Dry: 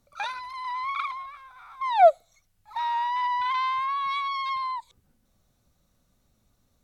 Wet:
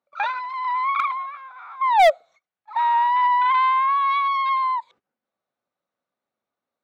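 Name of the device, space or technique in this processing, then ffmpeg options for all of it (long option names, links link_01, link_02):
walkie-talkie: -af "highpass=470,lowpass=2300,asoftclip=type=hard:threshold=-19.5dB,agate=range=-16dB:threshold=-58dB:ratio=16:detection=peak,volume=8.5dB"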